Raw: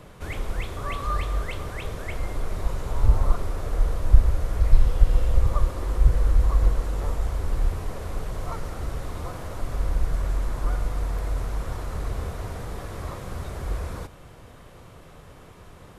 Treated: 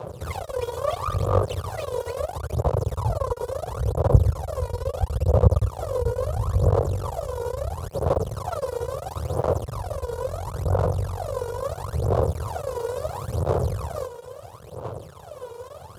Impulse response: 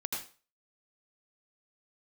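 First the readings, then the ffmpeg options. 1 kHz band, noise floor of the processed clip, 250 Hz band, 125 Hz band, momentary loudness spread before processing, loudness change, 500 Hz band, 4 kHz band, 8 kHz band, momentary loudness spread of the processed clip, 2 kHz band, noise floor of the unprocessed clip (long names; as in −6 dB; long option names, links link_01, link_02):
+5.5 dB, −43 dBFS, +3.5 dB, +3.5 dB, 12 LU, +2.0 dB, +12.0 dB, +0.5 dB, can't be measured, 13 LU, −4.0 dB, −47 dBFS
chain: -filter_complex "[0:a]aeval=exprs='max(val(0),0)':channel_layout=same,equalizer=frequency=125:width_type=o:width=1:gain=3,equalizer=frequency=250:width_type=o:width=1:gain=-11,equalizer=frequency=500:width_type=o:width=1:gain=11,equalizer=frequency=1000:width_type=o:width=1:gain=4,equalizer=frequency=2000:width_type=o:width=1:gain=-12,asplit=2[link_01][link_02];[link_02]acompressor=threshold=-32dB:ratio=6,volume=-0.5dB[link_03];[link_01][link_03]amix=inputs=2:normalize=0,aphaser=in_gain=1:out_gain=1:delay=2.1:decay=0.78:speed=0.74:type=sinusoidal,highpass=frequency=77:width=0.5412,highpass=frequency=77:width=1.3066,volume=-1dB"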